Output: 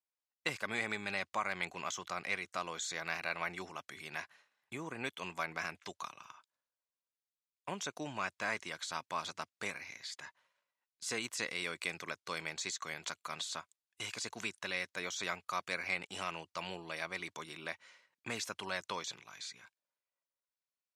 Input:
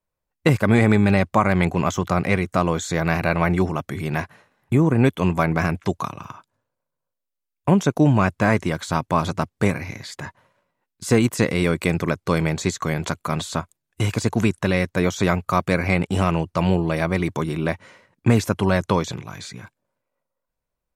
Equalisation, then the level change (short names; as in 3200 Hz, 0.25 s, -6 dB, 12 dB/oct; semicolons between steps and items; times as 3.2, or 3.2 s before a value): band-pass 5400 Hz, Q 0.8; high shelf 4000 Hz -6.5 dB; -3.0 dB